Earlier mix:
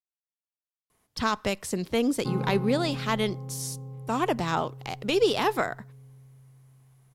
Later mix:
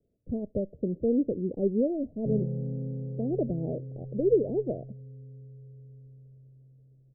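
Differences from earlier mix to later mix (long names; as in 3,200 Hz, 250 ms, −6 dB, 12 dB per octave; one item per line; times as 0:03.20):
speech: entry −0.90 s
master: add Butterworth low-pass 610 Hz 72 dB per octave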